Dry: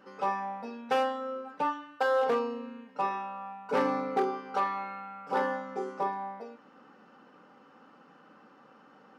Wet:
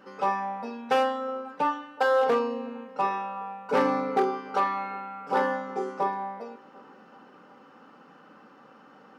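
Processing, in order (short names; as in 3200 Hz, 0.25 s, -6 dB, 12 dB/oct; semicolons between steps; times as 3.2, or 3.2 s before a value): band-limited delay 0.372 s, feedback 58%, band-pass 550 Hz, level -21 dB; gain +4 dB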